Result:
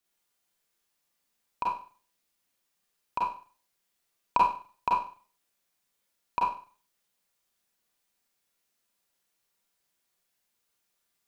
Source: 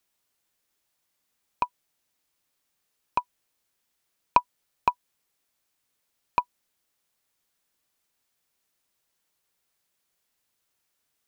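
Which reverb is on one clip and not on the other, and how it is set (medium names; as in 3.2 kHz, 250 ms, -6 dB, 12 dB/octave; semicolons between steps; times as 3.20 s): Schroeder reverb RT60 0.41 s, combs from 32 ms, DRR -4.5 dB; trim -7 dB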